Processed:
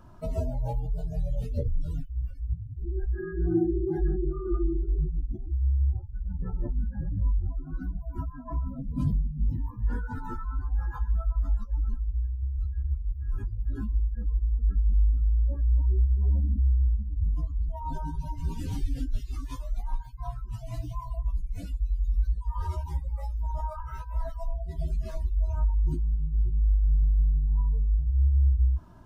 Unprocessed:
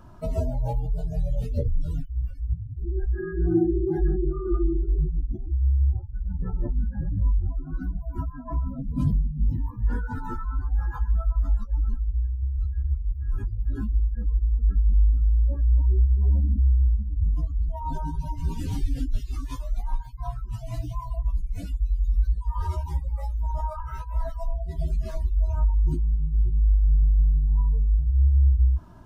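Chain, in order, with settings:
tuned comb filter 520 Hz, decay 0.48 s, mix 50%
level +2.5 dB

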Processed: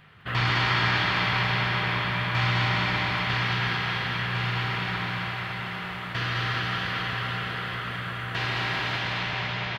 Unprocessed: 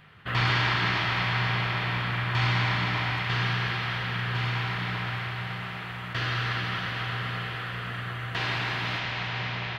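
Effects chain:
bouncing-ball delay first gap 210 ms, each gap 0.85×, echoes 5

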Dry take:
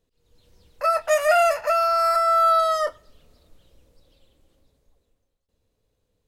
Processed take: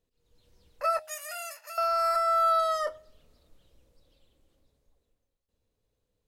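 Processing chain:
0:00.99–0:01.78: first difference
hum removal 89.05 Hz, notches 9
level −6 dB

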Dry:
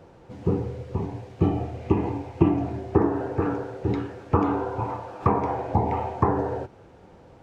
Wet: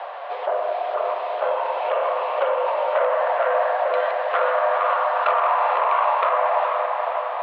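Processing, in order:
delay that plays each chunk backwards 149 ms, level −11.5 dB
in parallel at −2.5 dB: compressor whose output falls as the input rises −31 dBFS
on the sum: soft clipping −19 dBFS, distortion −10 dB
single-sideband voice off tune +220 Hz 340–3,600 Hz
on a send: feedback delay with all-pass diffusion 470 ms, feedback 53%, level −5 dB
on the sum: multiband upward and downward compressor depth 40%
level +6 dB

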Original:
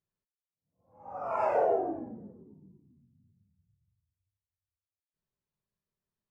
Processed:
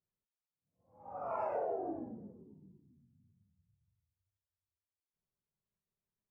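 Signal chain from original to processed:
high-shelf EQ 2,100 Hz −11.5 dB
downward compressor, threshold −30 dBFS, peak gain reduction 7 dB
level −3 dB

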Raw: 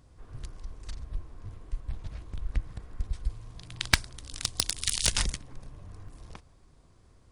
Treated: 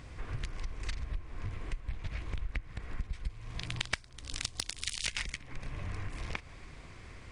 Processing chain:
parametric band 2,200 Hz +12 dB 1 octave, from 0:03.66 +6 dB, from 0:05.03 +15 dB
downward compressor 6 to 1, threshold −42 dBFS, peak gain reduction 27 dB
Savitzky-Golay smoothing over 9 samples
level +9 dB

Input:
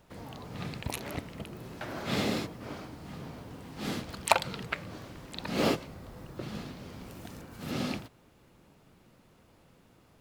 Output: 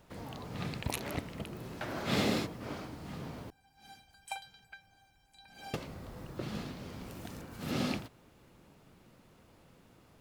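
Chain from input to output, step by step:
0:03.50–0:05.74: tuned comb filter 790 Hz, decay 0.19 s, harmonics all, mix 100%

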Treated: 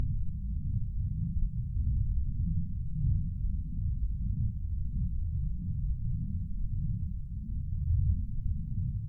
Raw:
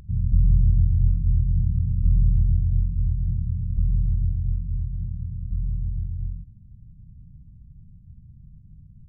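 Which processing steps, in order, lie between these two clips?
extreme stretch with random phases 6.5×, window 0.05 s, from 0:06.88
phase shifter 1.6 Hz, delay 1 ms, feedback 65%
level +6.5 dB

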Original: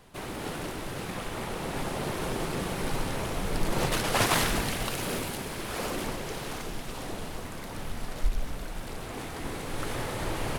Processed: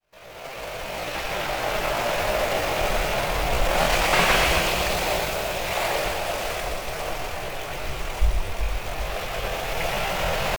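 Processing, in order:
fade in at the beginning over 1.25 s
pitch shifter +8 semitones
graphic EQ with 15 bands 250 Hz −12 dB, 630 Hz +8 dB, 2,500 Hz +7 dB
on a send: echo with a time of its own for lows and highs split 770 Hz, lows 379 ms, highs 120 ms, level −6 dB
on the sum: slew-rate limiting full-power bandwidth 200 Hz
level +4.5 dB

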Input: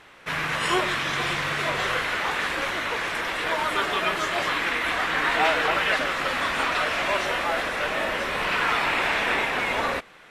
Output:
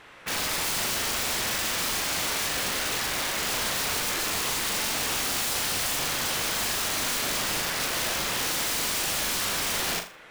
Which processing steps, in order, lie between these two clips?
0:07.52–0:07.92: low-shelf EQ 220 Hz −11.5 dB
wrap-around overflow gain 24 dB
flutter between parallel walls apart 6.9 metres, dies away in 0.34 s

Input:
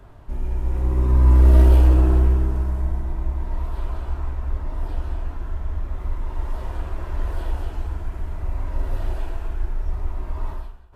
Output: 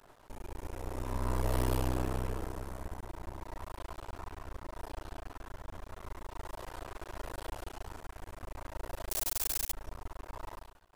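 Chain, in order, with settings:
0:09.10–0:09.73: bit-depth reduction 6 bits, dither triangular
half-wave rectification
bass and treble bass −14 dB, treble +8 dB
level −3 dB

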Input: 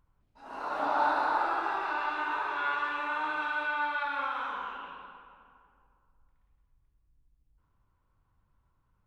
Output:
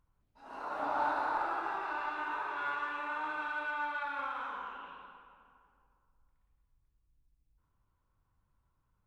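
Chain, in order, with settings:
dynamic equaliser 4,000 Hz, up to −4 dB, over −50 dBFS, Q 1.1
in parallel at −11 dB: asymmetric clip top −31.5 dBFS
on the sum: level −6.5 dB

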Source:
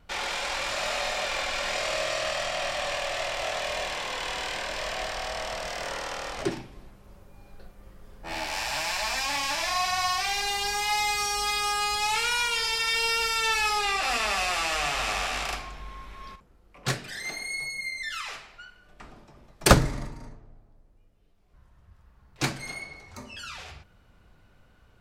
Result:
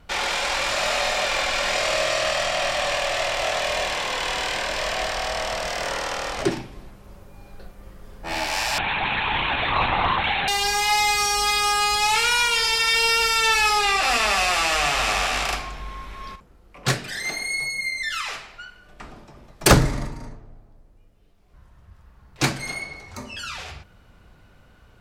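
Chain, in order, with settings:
0:08.78–0:10.48: linear-prediction vocoder at 8 kHz whisper
harmonic generator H 5 −13 dB, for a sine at −2.5 dBFS

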